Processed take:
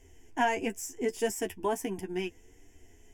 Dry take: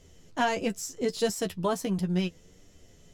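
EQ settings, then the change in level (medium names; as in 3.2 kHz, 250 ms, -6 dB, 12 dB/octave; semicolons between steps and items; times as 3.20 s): static phaser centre 830 Hz, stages 8; +1.5 dB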